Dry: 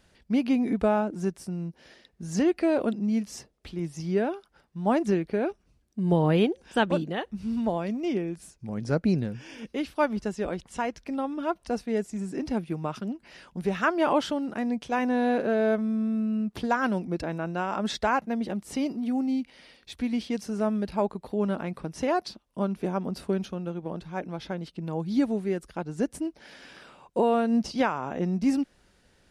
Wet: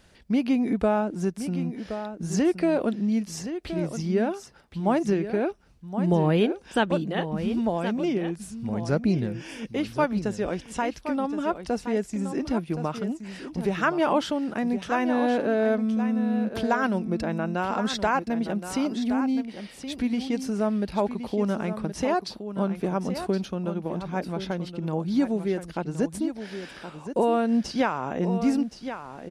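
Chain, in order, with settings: in parallel at +0.5 dB: compression, threshold -32 dBFS, peak gain reduction 13.5 dB; on the sum: delay 1071 ms -10 dB; trim -1.5 dB

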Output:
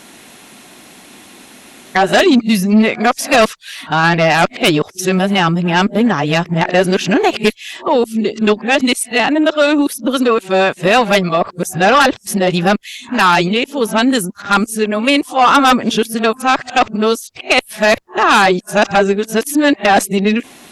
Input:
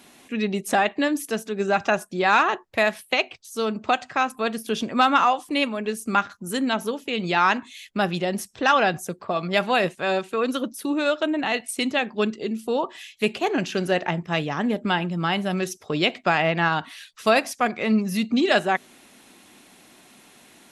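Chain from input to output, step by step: reverse the whole clip; Chebyshev shaper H 4 -33 dB, 5 -8 dB, 7 -23 dB, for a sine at -6 dBFS; trim +4 dB

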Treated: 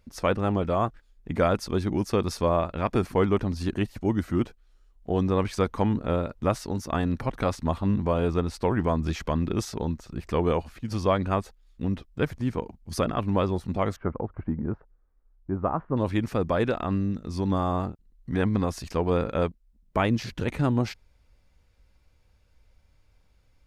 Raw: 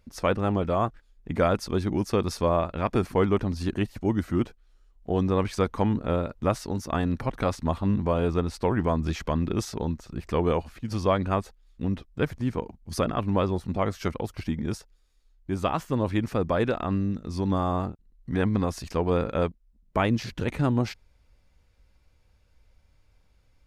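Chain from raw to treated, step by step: 13.96–15.97 s: low-pass 1.4 kHz 24 dB/octave

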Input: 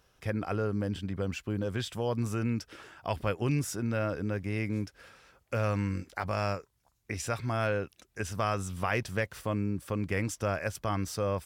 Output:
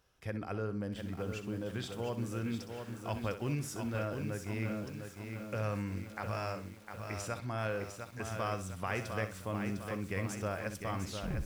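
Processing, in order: tape stop on the ending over 0.45 s; flutter echo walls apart 10.9 m, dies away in 0.32 s; bit-crushed delay 704 ms, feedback 55%, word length 8-bit, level -6 dB; trim -6.5 dB

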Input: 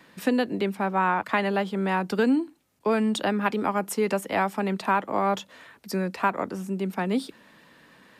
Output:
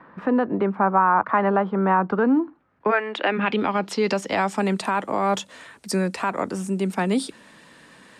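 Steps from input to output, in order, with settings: 2.90–3.37 s: high-pass 530 Hz -> 240 Hz 24 dB/octave; peak limiter -17.5 dBFS, peak gain reduction 7.5 dB; low-pass sweep 1.2 kHz -> 8.8 kHz, 2.49–4.71 s; trim +4.5 dB

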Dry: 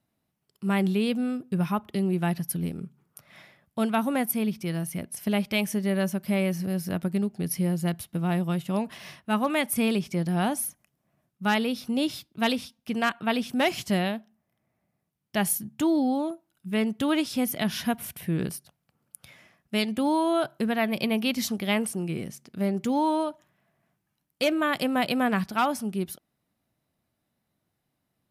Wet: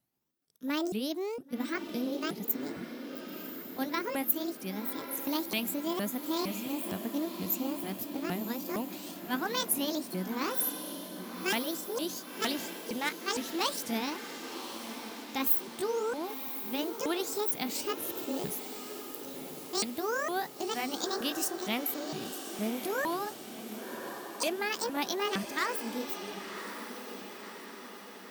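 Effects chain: sawtooth pitch modulation +11.5 st, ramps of 461 ms; treble shelf 5.6 kHz +11 dB; echo that smears into a reverb 1070 ms, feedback 58%, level -8.5 dB; trim -7.5 dB

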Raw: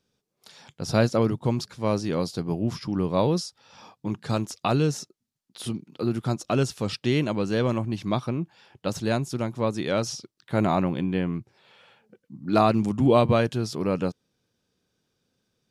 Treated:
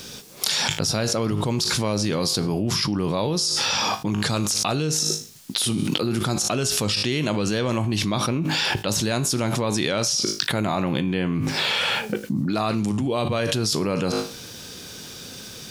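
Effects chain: treble shelf 2.1 kHz +10 dB; feedback comb 52 Hz, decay 0.36 s, harmonics all, mix 50%; level flattener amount 100%; trim -4.5 dB

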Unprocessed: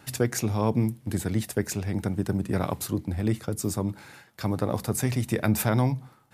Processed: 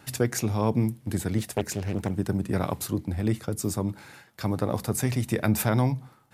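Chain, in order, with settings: 1.38–2.11 s: loudspeaker Doppler distortion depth 0.61 ms

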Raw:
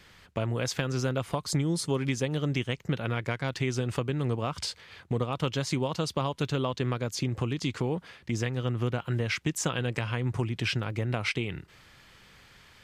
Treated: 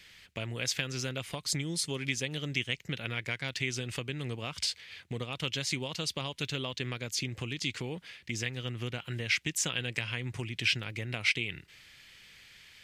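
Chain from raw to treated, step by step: resonant high shelf 1.6 kHz +9.5 dB, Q 1.5; trim -8 dB

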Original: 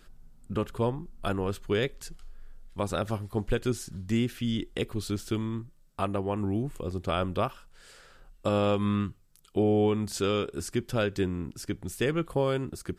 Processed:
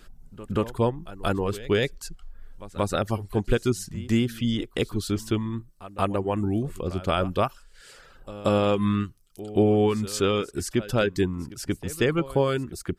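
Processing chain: reverb removal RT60 0.6 s; pre-echo 180 ms -17 dB; trim +5 dB

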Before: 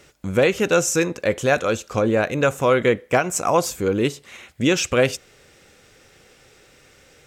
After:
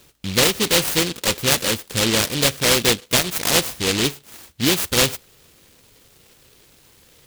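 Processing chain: delay time shaken by noise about 3.2 kHz, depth 0.37 ms

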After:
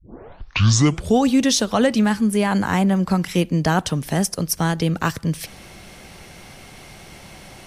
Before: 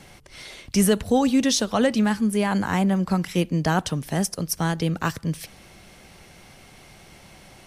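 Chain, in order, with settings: tape start-up on the opening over 1.23 s; in parallel at -2 dB: compression, threshold -30 dBFS, peak gain reduction 15 dB; on the sum: trim +1.5 dB

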